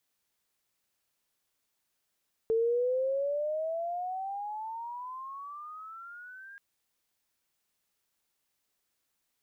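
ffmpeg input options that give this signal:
-f lavfi -i "aevalsrc='pow(10,(-23.5-22*t/4.08)/20)*sin(2*PI*444*4.08/(22.5*log(2)/12)*(exp(22.5*log(2)/12*t/4.08)-1))':d=4.08:s=44100"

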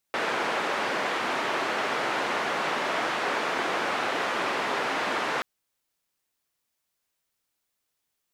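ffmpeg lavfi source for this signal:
-f lavfi -i "anoisesrc=c=white:d=5.28:r=44100:seed=1,highpass=f=310,lowpass=f=1600,volume=-11.3dB"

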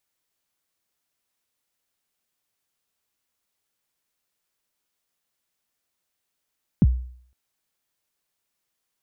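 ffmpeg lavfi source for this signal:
-f lavfi -i "aevalsrc='0.335*pow(10,-3*t/0.57)*sin(2*PI*(250*0.037/log(62/250)*(exp(log(62/250)*min(t,0.037)/0.037)-1)+62*max(t-0.037,0)))':d=0.51:s=44100"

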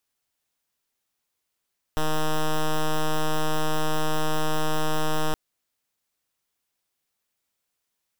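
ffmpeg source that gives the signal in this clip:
-f lavfi -i "aevalsrc='0.0794*(2*lt(mod(155*t,1),0.07)-1)':d=3.37:s=44100"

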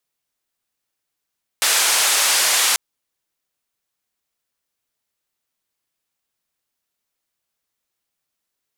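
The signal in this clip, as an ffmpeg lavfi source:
-f lavfi -i "anoisesrc=c=white:d=1.14:r=44100:seed=1,highpass=f=690,lowpass=f=10000,volume=-8.5dB"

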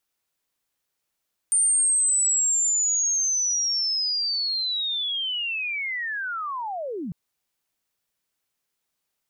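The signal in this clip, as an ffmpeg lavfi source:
-f lavfi -i "aevalsrc='pow(10,(-17-11.5*t/5.6)/20)*sin(2*PI*(9000*t-8850*t*t/(2*5.6)))':d=5.6:s=44100"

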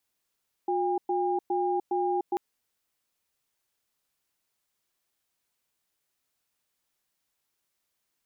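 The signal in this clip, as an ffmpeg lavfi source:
-f lavfi -i "aevalsrc='0.0447*(sin(2*PI*359*t)+sin(2*PI*807*t))*clip(min(mod(t,0.41),0.3-mod(t,0.41))/0.005,0,1)':d=1.69:s=44100"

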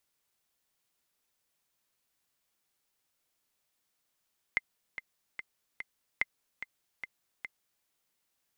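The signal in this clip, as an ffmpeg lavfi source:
-f lavfi -i "aevalsrc='pow(10,(-14-11.5*gte(mod(t,4*60/146),60/146))/20)*sin(2*PI*2080*mod(t,60/146))*exp(-6.91*mod(t,60/146)/0.03)':d=3.28:s=44100"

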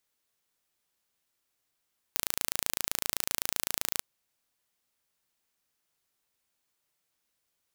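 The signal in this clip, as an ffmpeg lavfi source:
-f lavfi -i "aevalsrc='0.841*eq(mod(n,1586),0)':d=1.87:s=44100"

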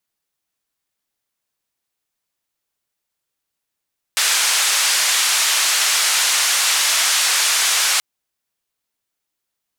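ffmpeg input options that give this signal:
-f lavfi -i "anoisesrc=c=white:d=3.83:r=44100:seed=1,highpass=f=1100,lowpass=f=8400,volume=-7.5dB"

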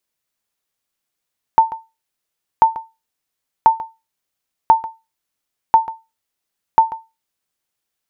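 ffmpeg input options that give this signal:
-f lavfi -i "aevalsrc='0.841*(sin(2*PI*897*mod(t,1.04))*exp(-6.91*mod(t,1.04)/0.24)+0.15*sin(2*PI*897*max(mod(t,1.04)-0.14,0))*exp(-6.91*max(mod(t,1.04)-0.14,0)/0.24))':d=6.24:s=44100"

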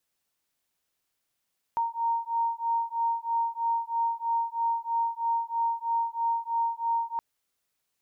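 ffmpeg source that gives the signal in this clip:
-f lavfi -i "aevalsrc='0.0376*(sin(2*PI*924*t)+sin(2*PI*927.1*t))':d=5.42:s=44100"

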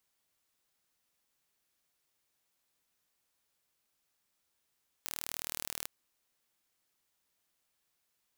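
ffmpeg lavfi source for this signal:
-f lavfi -i "aevalsrc='0.299*eq(mod(n,1131),0)':d=0.81:s=44100"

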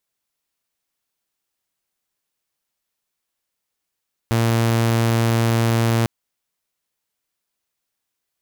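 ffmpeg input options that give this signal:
-f lavfi -i "aevalsrc='0.224*(2*mod(115*t,1)-1)':d=1.75:s=44100"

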